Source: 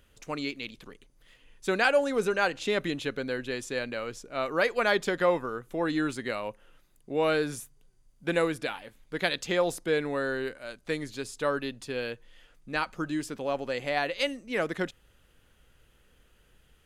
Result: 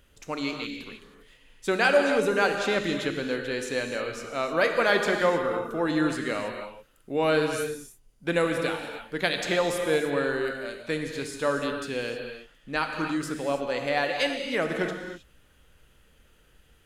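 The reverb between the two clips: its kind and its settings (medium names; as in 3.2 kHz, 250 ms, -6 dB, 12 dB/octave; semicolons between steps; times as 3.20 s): gated-style reverb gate 340 ms flat, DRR 3.5 dB; trim +1.5 dB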